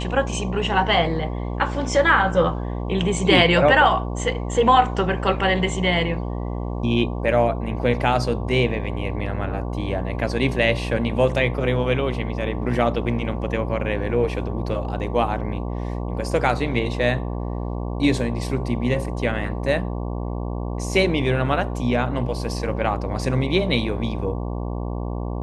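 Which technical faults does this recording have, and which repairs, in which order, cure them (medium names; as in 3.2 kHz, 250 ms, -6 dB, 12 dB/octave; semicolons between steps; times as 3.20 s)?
buzz 60 Hz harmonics 19 -27 dBFS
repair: de-hum 60 Hz, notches 19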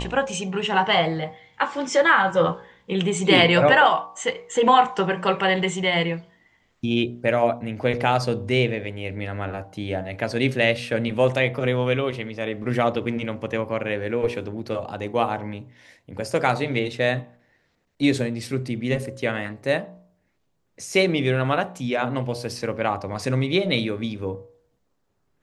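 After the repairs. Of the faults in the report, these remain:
nothing left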